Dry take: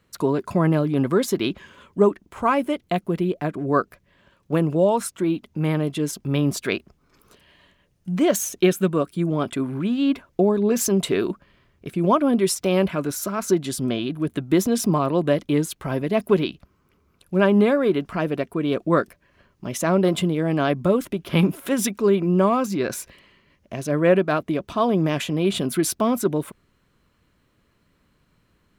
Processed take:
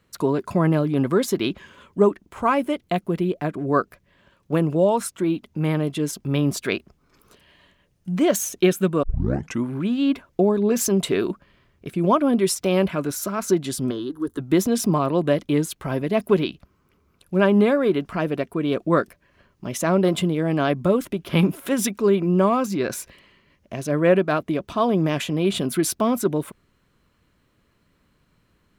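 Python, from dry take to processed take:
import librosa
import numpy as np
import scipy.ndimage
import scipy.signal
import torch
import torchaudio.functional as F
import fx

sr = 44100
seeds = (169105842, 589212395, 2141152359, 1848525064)

y = fx.fixed_phaser(x, sr, hz=650.0, stages=6, at=(13.9, 14.38), fade=0.02)
y = fx.edit(y, sr, fx.tape_start(start_s=9.03, length_s=0.64), tone=tone)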